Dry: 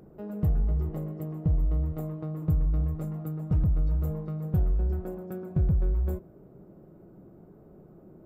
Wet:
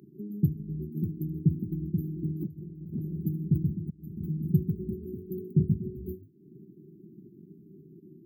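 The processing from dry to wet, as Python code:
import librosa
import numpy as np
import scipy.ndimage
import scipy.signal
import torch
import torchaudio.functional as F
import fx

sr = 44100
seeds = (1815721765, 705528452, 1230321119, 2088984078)

y = fx.room_early_taps(x, sr, ms=(13, 75), db=(-13.5, -17.0))
y = fx.transient(y, sr, attack_db=5, sustain_db=-10)
y = fx.echo_pitch(y, sr, ms=641, semitones=2, count=3, db_per_echo=-6.0)
y = fx.brickwall_bandstop(y, sr, low_hz=410.0, high_hz=11000.0)
y = fx.over_compress(y, sr, threshold_db=-32.0, ratio=-1.0, at=(2.41, 3.18), fade=0.02)
y = fx.auto_swell(y, sr, attack_ms=525.0, at=(3.75, 4.16), fade=0.02)
y = scipy.signal.sosfilt(scipy.signal.butter(4, 120.0, 'highpass', fs=sr, output='sos'), y)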